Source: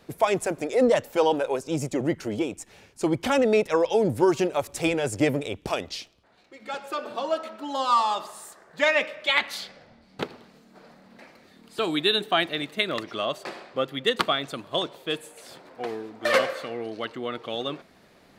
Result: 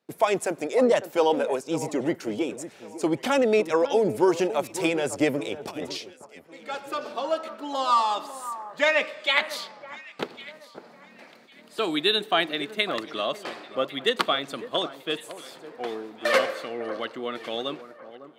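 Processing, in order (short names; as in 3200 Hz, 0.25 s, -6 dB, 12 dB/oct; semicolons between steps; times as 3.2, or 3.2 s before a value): gate with hold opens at -44 dBFS; HPF 190 Hz 12 dB/oct; 5.56–5.97 negative-ratio compressor -37 dBFS, ratio -1; on a send: echo with dull and thin repeats by turns 0.552 s, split 1600 Hz, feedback 50%, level -13 dB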